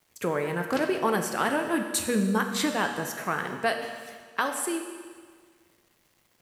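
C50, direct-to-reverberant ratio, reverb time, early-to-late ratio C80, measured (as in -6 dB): 6.5 dB, 4.5 dB, 1.7 s, 7.5 dB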